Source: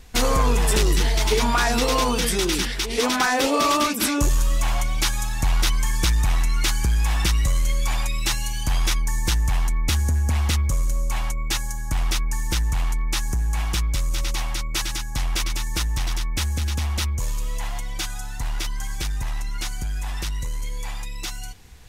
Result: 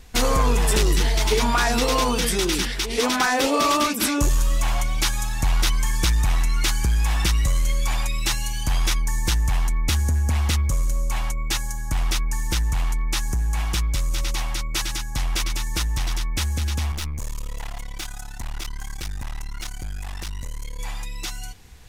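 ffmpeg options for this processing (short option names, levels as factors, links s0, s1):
-filter_complex "[0:a]asettb=1/sr,asplit=3[s0][s1][s2];[s0]atrim=end=16.924[s3];[s1]atrim=start=16.92:end=20.79,asetpts=PTS-STARTPTS,afade=t=in:d=0.004:c=qsin,afade=t=out:st=3.866:d=0.004:c=qsin,aeval=exprs='(tanh(17.8*val(0)+0.8)-tanh(0.8))/17.8':c=same[s4];[s2]atrim=start=20.786[s5];[s3][s4]acrossfade=d=0.004:c1=hsin:c2=qsin[s6];[s6][s5]acrossfade=d=0.004:c1=qsin:c2=hsin"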